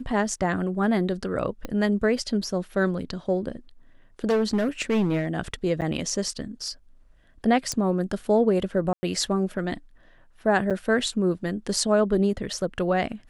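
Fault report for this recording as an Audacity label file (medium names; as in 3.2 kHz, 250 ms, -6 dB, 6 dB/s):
1.650000	1.650000	pop -17 dBFS
4.290000	5.270000	clipped -18.5 dBFS
5.810000	5.820000	dropout 8.4 ms
7.720000	7.720000	pop -14 dBFS
8.930000	9.030000	dropout 100 ms
10.700000	10.710000	dropout 7 ms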